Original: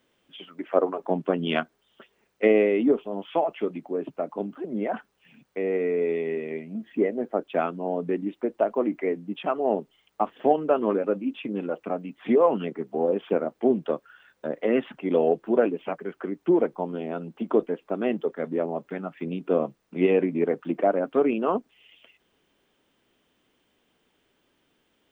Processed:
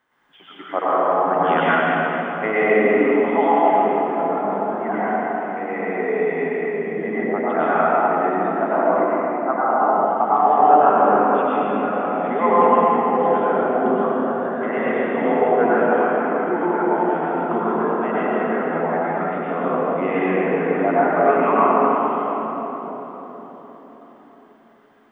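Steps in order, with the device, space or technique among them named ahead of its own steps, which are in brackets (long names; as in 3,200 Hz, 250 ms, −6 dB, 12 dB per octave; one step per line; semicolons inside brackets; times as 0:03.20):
0:09.03–0:09.69: Chebyshev band-pass filter 580–1,600 Hz, order 4
cathedral (convolution reverb RT60 4.6 s, pre-delay 92 ms, DRR −10.5 dB)
flat-topped bell 1,200 Hz +13 dB
level −7.5 dB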